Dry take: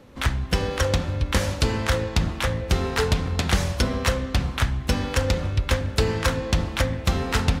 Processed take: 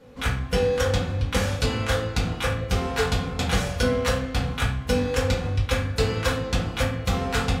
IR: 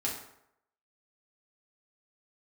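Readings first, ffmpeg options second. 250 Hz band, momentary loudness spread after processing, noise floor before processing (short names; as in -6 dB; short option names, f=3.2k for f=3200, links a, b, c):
-0.5 dB, 3 LU, -34 dBFS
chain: -filter_complex "[1:a]atrim=start_sample=2205,asetrate=79380,aresample=44100[a];[0:a][a]afir=irnorm=-1:irlink=0"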